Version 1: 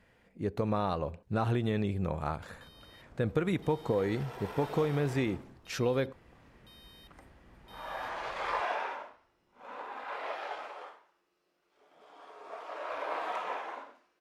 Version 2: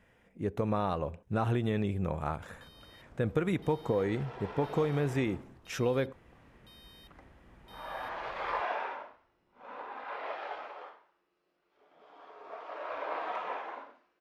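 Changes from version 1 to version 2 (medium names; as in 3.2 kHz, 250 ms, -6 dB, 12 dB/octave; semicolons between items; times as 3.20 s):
speech: add peaking EQ 4.4 kHz -12.5 dB 0.21 oct; second sound: add distance through air 150 m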